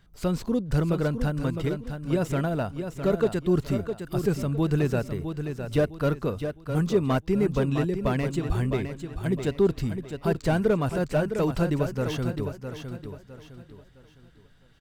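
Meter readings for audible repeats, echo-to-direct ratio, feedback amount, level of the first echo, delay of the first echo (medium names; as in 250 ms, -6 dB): 3, -7.5 dB, 34%, -8.0 dB, 659 ms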